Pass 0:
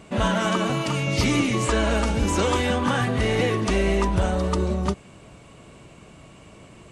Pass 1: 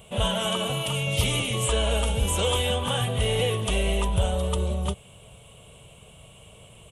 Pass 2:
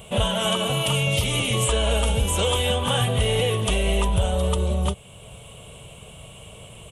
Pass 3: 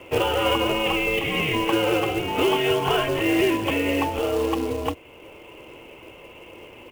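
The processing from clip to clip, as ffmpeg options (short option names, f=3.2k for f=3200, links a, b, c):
-af "firequalizer=gain_entry='entry(110,0);entry(310,-17);entry(450,-1);entry(1300,-8);entry(1800,-11);entry(3200,8);entry(4600,-12);entry(10000,12)':delay=0.05:min_phase=1"
-af "alimiter=limit=-18dB:level=0:latency=1:release=467,volume=6.5dB"
-af "highpass=f=240:t=q:w=0.5412,highpass=f=240:t=q:w=1.307,lowpass=f=2.8k:t=q:w=0.5176,lowpass=f=2.8k:t=q:w=0.7071,lowpass=f=2.8k:t=q:w=1.932,afreqshift=-110,acrusher=bits=4:mode=log:mix=0:aa=0.000001,volume=4dB"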